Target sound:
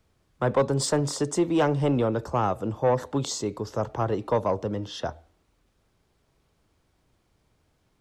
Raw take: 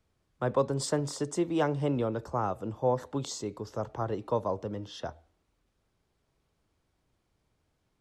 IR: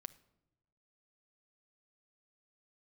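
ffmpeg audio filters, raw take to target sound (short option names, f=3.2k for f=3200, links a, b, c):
-af "asoftclip=type=tanh:threshold=-20.5dB,volume=7dB"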